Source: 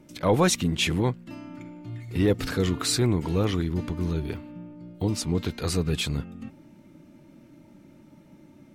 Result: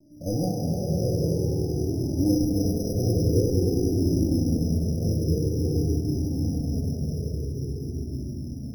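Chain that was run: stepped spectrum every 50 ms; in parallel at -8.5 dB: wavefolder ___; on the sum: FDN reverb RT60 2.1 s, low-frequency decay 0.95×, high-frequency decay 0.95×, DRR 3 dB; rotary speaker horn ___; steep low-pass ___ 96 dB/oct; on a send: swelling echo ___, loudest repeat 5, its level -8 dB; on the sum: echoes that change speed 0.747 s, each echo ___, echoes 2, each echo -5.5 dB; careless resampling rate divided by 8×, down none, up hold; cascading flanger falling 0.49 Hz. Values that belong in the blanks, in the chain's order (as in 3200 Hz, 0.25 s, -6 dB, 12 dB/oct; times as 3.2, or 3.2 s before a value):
-19.5 dBFS, 1.2 Hz, 760 Hz, 99 ms, -2 st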